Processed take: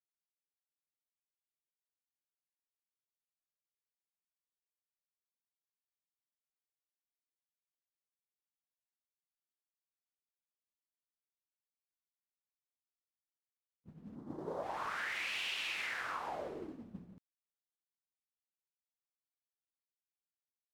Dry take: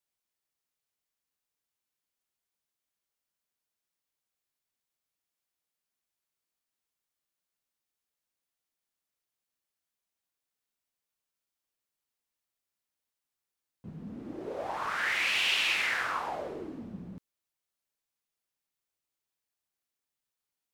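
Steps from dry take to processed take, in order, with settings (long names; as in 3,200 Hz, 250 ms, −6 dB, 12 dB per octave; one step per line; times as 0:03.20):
downward expander −34 dBFS
0:14.15–0:14.63: graphic EQ with 15 bands 160 Hz +10 dB, 1,000 Hz +10 dB, 2,500 Hz −11 dB
downward compressor, threshold −37 dBFS, peak gain reduction 12.5 dB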